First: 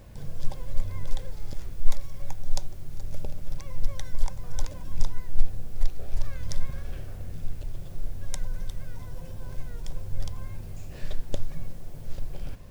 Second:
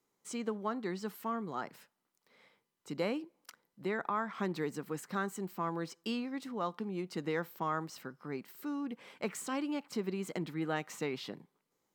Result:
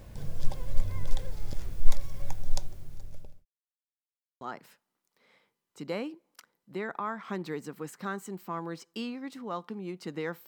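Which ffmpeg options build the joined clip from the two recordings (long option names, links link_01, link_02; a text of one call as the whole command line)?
ffmpeg -i cue0.wav -i cue1.wav -filter_complex "[0:a]apad=whole_dur=10.47,atrim=end=10.47,asplit=2[link_01][link_02];[link_01]atrim=end=3.45,asetpts=PTS-STARTPTS,afade=type=out:start_time=2.33:duration=1.12[link_03];[link_02]atrim=start=3.45:end=4.41,asetpts=PTS-STARTPTS,volume=0[link_04];[1:a]atrim=start=1.51:end=7.57,asetpts=PTS-STARTPTS,afade=type=in:duration=0.004:curve=hsin[link_05];[link_03][link_04][link_05]concat=n=3:v=0:a=1" out.wav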